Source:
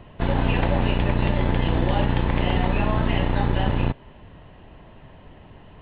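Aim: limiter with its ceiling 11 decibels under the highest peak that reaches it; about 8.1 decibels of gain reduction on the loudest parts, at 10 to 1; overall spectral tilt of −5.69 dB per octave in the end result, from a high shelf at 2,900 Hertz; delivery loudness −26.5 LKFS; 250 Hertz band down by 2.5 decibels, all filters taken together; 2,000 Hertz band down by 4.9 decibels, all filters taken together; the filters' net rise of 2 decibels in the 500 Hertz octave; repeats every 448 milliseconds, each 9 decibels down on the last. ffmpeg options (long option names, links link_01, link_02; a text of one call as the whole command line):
ffmpeg -i in.wav -af "equalizer=frequency=250:width_type=o:gain=-4.5,equalizer=frequency=500:width_type=o:gain=4,equalizer=frequency=2000:width_type=o:gain=-8.5,highshelf=frequency=2900:gain=4.5,acompressor=threshold=-24dB:ratio=10,alimiter=level_in=1dB:limit=-24dB:level=0:latency=1,volume=-1dB,aecho=1:1:448|896|1344|1792:0.355|0.124|0.0435|0.0152,volume=12.5dB" out.wav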